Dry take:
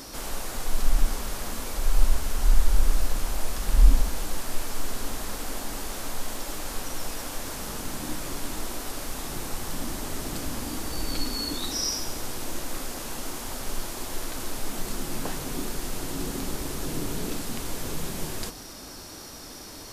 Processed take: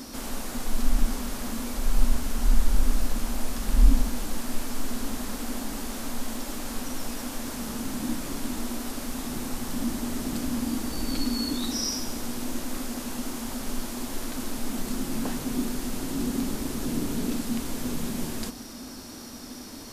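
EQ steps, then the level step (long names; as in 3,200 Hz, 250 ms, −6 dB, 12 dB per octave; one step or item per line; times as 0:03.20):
parametric band 240 Hz +14.5 dB 0.37 octaves
−1.5 dB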